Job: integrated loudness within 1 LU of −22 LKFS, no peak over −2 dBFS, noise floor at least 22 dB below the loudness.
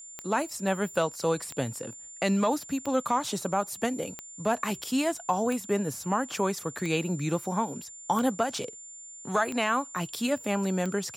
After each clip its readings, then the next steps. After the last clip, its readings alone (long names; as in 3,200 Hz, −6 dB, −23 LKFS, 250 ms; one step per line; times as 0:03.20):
number of clicks 9; interfering tone 7,200 Hz; level of the tone −43 dBFS; integrated loudness −29.5 LKFS; sample peak −13.0 dBFS; target loudness −22.0 LKFS
→ click removal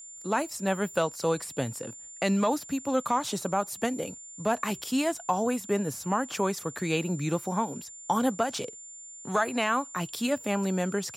number of clicks 0; interfering tone 7,200 Hz; level of the tone −43 dBFS
→ notch filter 7,200 Hz, Q 30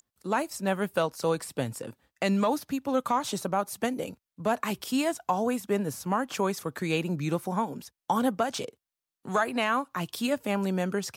interfering tone none found; integrated loudness −29.5 LKFS; sample peak −13.5 dBFS; target loudness −22.0 LKFS
→ level +7.5 dB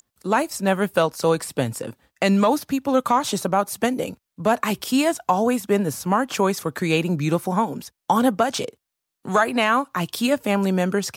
integrated loudness −22.0 LKFS; sample peak −6.0 dBFS; background noise floor −82 dBFS